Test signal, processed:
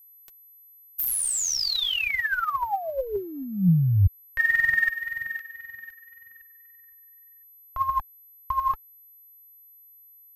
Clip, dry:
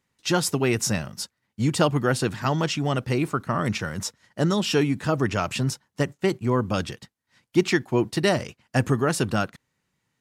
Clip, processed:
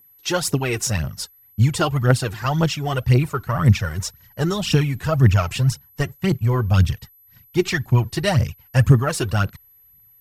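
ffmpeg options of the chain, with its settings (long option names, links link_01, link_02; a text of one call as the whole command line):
ffmpeg -i in.wav -af "aphaser=in_gain=1:out_gain=1:delay=3:decay=0.62:speed=1.9:type=triangular,aeval=exprs='val(0)+0.00316*sin(2*PI*12000*n/s)':channel_layout=same,asubboost=boost=10.5:cutoff=100" out.wav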